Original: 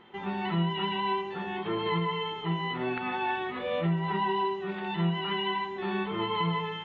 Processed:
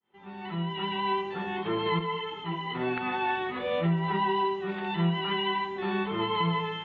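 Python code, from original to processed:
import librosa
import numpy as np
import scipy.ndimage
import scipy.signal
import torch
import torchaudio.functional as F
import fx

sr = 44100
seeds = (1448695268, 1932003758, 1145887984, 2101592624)

y = fx.fade_in_head(x, sr, length_s=1.18)
y = fx.ensemble(y, sr, at=(1.99, 2.75))
y = y * 10.0 ** (1.5 / 20.0)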